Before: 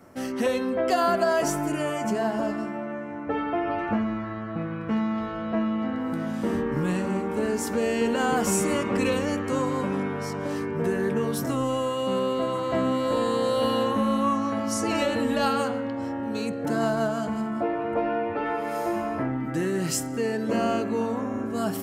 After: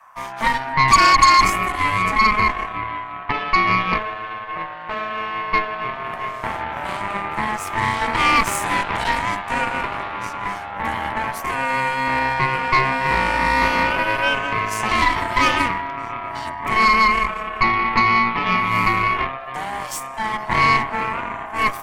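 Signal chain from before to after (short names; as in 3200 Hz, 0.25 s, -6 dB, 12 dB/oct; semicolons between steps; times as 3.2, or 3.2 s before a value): frequency shift +420 Hz; resonant high-pass 1100 Hz, resonance Q 5.1; added harmonics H 8 -12 dB, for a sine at 0 dBFS; gain -3 dB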